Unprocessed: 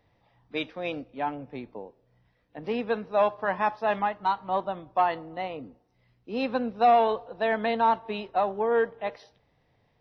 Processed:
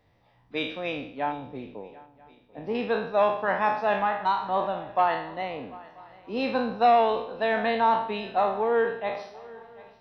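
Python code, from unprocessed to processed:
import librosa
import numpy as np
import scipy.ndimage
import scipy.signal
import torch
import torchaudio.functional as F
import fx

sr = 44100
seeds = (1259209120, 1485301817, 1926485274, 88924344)

y = fx.spec_trails(x, sr, decay_s=0.6)
y = fx.peak_eq(y, sr, hz=3000.0, db=-11.0, octaves=2.4, at=(1.32, 2.75))
y = fx.echo_swing(y, sr, ms=985, ratio=3, feedback_pct=31, wet_db=-21.5)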